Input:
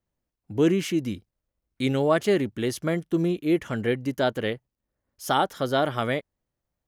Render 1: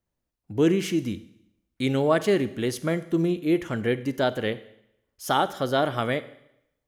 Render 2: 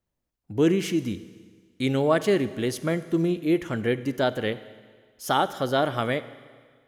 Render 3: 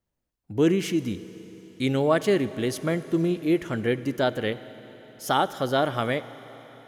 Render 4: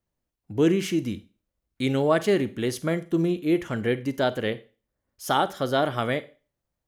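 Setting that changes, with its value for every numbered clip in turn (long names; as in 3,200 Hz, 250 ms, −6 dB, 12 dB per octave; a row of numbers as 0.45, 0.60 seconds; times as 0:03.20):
four-comb reverb, RT60: 0.79, 1.7, 4.5, 0.35 seconds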